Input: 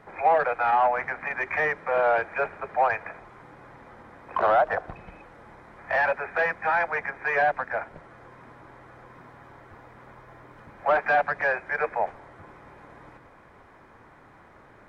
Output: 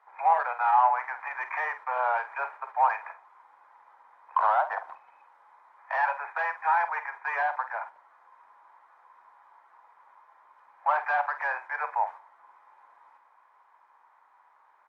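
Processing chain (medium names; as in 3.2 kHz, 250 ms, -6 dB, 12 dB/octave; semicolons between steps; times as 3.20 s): gate -38 dBFS, range -7 dB; resonant high-pass 940 Hz, resonance Q 4.9; doubling 48 ms -11 dB; trim -8.5 dB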